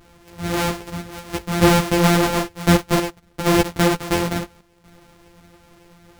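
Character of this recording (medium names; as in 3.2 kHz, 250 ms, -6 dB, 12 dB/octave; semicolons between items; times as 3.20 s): a buzz of ramps at a fixed pitch in blocks of 256 samples; chopped level 0.62 Hz, depth 60%, duty 85%; a shimmering, thickened sound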